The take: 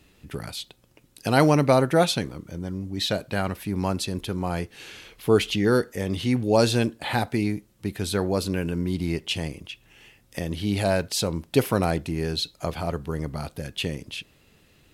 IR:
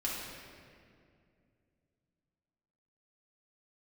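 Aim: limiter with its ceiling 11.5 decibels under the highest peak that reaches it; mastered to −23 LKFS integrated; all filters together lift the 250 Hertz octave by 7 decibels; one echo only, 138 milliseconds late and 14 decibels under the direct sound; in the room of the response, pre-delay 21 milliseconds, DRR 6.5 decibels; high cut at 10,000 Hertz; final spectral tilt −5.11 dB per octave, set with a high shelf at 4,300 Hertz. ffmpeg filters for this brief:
-filter_complex "[0:a]lowpass=10000,equalizer=frequency=250:width_type=o:gain=9,highshelf=frequency=4300:gain=8.5,alimiter=limit=-12.5dB:level=0:latency=1,aecho=1:1:138:0.2,asplit=2[link_01][link_02];[1:a]atrim=start_sample=2205,adelay=21[link_03];[link_02][link_03]afir=irnorm=-1:irlink=0,volume=-11dB[link_04];[link_01][link_04]amix=inputs=2:normalize=0,volume=0.5dB"

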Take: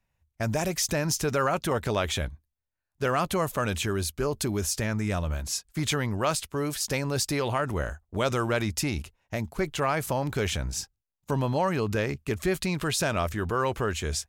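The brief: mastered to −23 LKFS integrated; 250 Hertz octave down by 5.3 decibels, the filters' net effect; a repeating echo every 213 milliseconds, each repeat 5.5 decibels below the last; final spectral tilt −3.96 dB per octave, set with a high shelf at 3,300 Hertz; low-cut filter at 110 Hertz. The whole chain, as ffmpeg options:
ffmpeg -i in.wav -af "highpass=110,equalizer=frequency=250:width_type=o:gain=-7.5,highshelf=frequency=3300:gain=-3.5,aecho=1:1:213|426|639|852|1065|1278|1491:0.531|0.281|0.149|0.079|0.0419|0.0222|0.0118,volume=6.5dB" out.wav

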